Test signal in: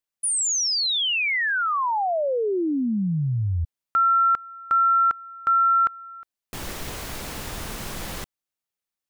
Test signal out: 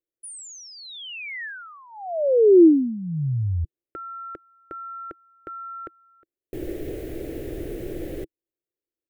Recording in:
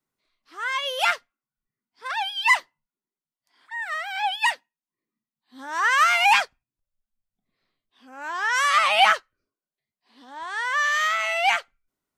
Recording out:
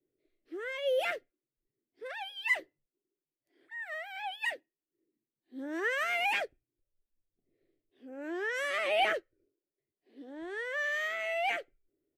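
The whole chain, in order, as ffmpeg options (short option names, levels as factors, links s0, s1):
-af "firequalizer=gain_entry='entry(140,0);entry(200,-9);entry(330,14);entry(580,2);entry(970,-25);entry(1800,-9);entry(4900,-20);entry(14000,-9)':delay=0.05:min_phase=1"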